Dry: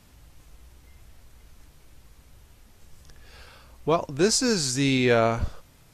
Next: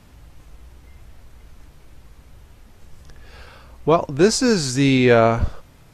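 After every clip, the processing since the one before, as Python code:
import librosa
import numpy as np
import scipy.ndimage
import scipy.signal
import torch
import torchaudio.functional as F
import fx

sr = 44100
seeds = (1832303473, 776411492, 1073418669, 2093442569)

y = fx.high_shelf(x, sr, hz=3300.0, db=-8.0)
y = y * 10.0 ** (7.0 / 20.0)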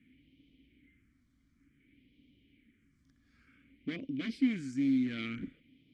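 y = fx.phaser_stages(x, sr, stages=4, low_hz=430.0, high_hz=1400.0, hz=0.55, feedback_pct=35)
y = 10.0 ** (-17.5 / 20.0) * (np.abs((y / 10.0 ** (-17.5 / 20.0) + 3.0) % 4.0 - 2.0) - 1.0)
y = fx.vowel_filter(y, sr, vowel='i')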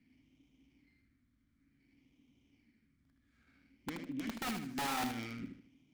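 y = (np.mod(10.0 ** (27.5 / 20.0) * x + 1.0, 2.0) - 1.0) / 10.0 ** (27.5 / 20.0)
y = fx.echo_feedback(y, sr, ms=77, feedback_pct=34, wet_db=-6.5)
y = fx.running_max(y, sr, window=5)
y = y * 10.0 ** (-5.0 / 20.0)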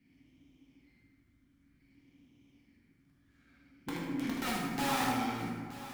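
y = x + 10.0 ** (-15.0 / 20.0) * np.pad(x, (int(924 * sr / 1000.0), 0))[:len(x)]
y = fx.rev_plate(y, sr, seeds[0], rt60_s=1.8, hf_ratio=0.5, predelay_ms=0, drr_db=-4.0)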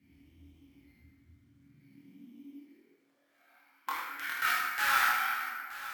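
y = fx.filter_sweep_highpass(x, sr, from_hz=72.0, to_hz=1500.0, start_s=1.13, end_s=4.23, q=5.8)
y = fx.doubler(y, sr, ms=25.0, db=-3)
y = np.repeat(y[::3], 3)[:len(y)]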